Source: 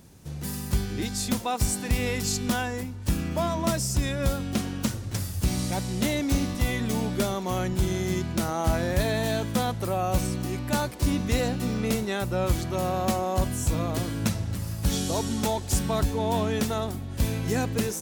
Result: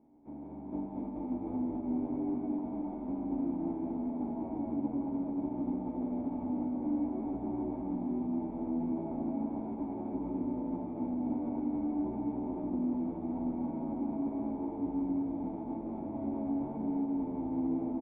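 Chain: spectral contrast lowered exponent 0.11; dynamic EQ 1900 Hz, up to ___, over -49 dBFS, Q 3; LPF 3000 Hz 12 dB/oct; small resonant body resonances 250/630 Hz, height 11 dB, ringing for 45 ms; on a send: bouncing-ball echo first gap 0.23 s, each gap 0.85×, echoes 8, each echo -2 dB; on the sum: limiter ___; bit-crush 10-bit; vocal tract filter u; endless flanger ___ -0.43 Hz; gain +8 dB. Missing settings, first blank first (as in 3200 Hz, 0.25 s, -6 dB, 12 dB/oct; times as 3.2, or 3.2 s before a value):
-6 dB, -21 dBFS, 10.3 ms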